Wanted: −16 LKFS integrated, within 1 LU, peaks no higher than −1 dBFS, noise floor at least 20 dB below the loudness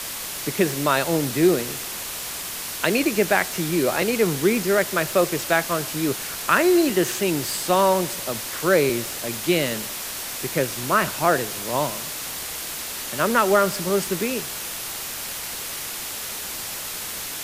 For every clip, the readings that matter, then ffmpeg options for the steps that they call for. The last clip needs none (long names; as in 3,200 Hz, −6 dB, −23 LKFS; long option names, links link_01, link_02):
background noise floor −32 dBFS; target noise floor −43 dBFS; integrated loudness −23.0 LKFS; sample peak −2.5 dBFS; target loudness −16.0 LKFS
→ -af "afftdn=noise_reduction=11:noise_floor=-32"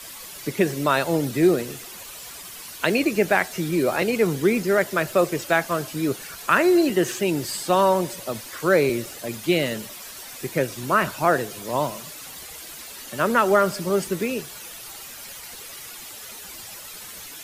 background noise floor −39 dBFS; target noise floor −43 dBFS
→ -af "afftdn=noise_reduction=6:noise_floor=-39"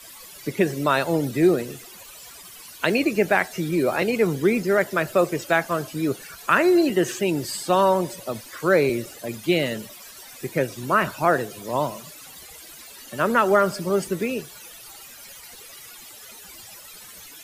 background noise floor −44 dBFS; integrated loudness −22.5 LKFS; sample peak −3.5 dBFS; target loudness −16.0 LKFS
→ -af "volume=6.5dB,alimiter=limit=-1dB:level=0:latency=1"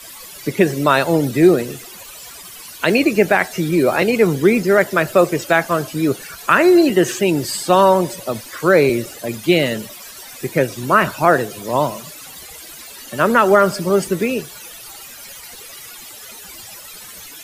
integrated loudness −16.0 LKFS; sample peak −1.0 dBFS; background noise floor −37 dBFS